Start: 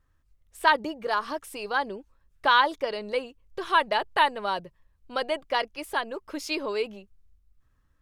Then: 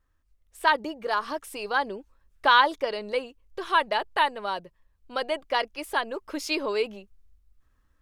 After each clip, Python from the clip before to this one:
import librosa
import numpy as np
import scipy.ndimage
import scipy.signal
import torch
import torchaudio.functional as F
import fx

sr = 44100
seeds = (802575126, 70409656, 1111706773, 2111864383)

y = fx.peak_eq(x, sr, hz=120.0, db=-9.0, octaves=0.71)
y = fx.rider(y, sr, range_db=3, speed_s=2.0)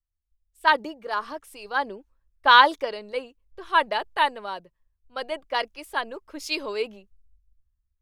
y = fx.band_widen(x, sr, depth_pct=70)
y = F.gain(torch.from_numpy(y), -1.0).numpy()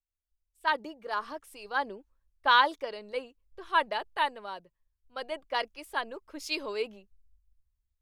y = fx.rider(x, sr, range_db=3, speed_s=0.5)
y = F.gain(torch.from_numpy(y), -7.5).numpy()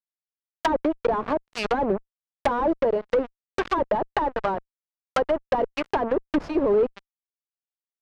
y = fx.fuzz(x, sr, gain_db=48.0, gate_db=-42.0)
y = fx.env_lowpass_down(y, sr, base_hz=640.0, full_db=-14.5)
y = F.gain(torch.from_numpy(y), -2.0).numpy()